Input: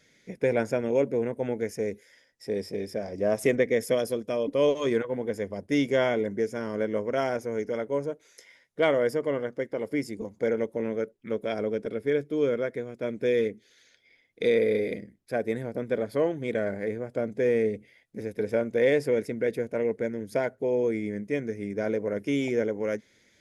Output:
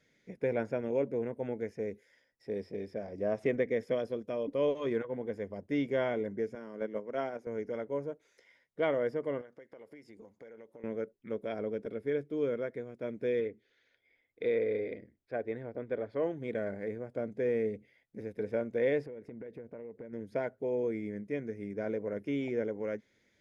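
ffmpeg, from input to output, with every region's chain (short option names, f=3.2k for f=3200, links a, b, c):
-filter_complex "[0:a]asettb=1/sr,asplit=3[a][b][c];[a]atrim=end=6.554[d];[b]atrim=start=6.55:end=7.47,asetpts=PTS-STARTPTS,afade=t=in:d=0.004:c=qsin,afade=t=out:st=0.916:d=0.004:c=qsin,highpass=f=150:w=0.5412,highpass=f=150:w=1.3066,agate=range=-6dB:threshold=-28dB:ratio=16:release=100:detection=peak[e];[c]atrim=start=7.466[f];[d][e]acrossfade=d=0.004:c1=hsin:c2=qsin[g];[g][f]acrossfade=d=0.004:c1=qsin:c2=hsin,asettb=1/sr,asplit=3[h][i][j];[h]atrim=end=9.414[k];[i]atrim=start=9.41:end=10.84,asetpts=PTS-STARTPTS,afade=t=in:d=0.004:c=qsin,afade=t=out:st=1.426:d=0.004:c=qsin,lowshelf=f=360:g=-11,acompressor=threshold=-40dB:ratio=12:attack=3.2:release=140:knee=1:detection=peak[l];[j]atrim=start=10.836[m];[k][l]acrossfade=d=0.004:c1=hsin:c2=qsin[n];[n][m]acrossfade=d=0.004:c1=qsin:c2=hsin,asettb=1/sr,asplit=3[o][p][q];[o]atrim=end=13.404[r];[p]atrim=start=13.4:end=16.23,asetpts=PTS-STARTPTS,afade=t=in:d=0.004:c=qsin,afade=t=out:st=2.826:d=0.004:c=qsin,lowpass=3.4k,equalizer=f=180:w=2.5:g=-10.5[s];[q]atrim=start=16.226[t];[r][s]acrossfade=d=0.004:c1=hsin:c2=qsin[u];[u][t]acrossfade=d=0.004:c1=qsin:c2=hsin,asettb=1/sr,asplit=3[v][w][x];[v]atrim=end=19.064[y];[w]atrim=start=19.06:end=20.13,asetpts=PTS-STARTPTS,afade=t=in:d=0.004:c=qsin,afade=t=out:st=1.066:d=0.004:c=qsin,lowpass=f=1.5k:p=1,acompressor=threshold=-34dB:ratio=12:attack=3.2:release=140:knee=1:detection=peak[z];[x]atrim=start=20.126[aa];[y][z]acrossfade=d=0.004:c1=hsin:c2=qsin[ab];[ab][aa]acrossfade=d=0.004:c1=qsin:c2=hsin,acrossover=split=4700[ac][ad];[ad]acompressor=threshold=-59dB:ratio=4:attack=1:release=60[ae];[ac][ae]amix=inputs=2:normalize=0,highshelf=f=3.8k:g=-9.5,volume=-6.5dB"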